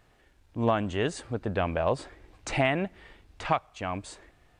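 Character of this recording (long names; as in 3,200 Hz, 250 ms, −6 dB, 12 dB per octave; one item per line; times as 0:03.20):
background noise floor −63 dBFS
spectral slope −5.0 dB per octave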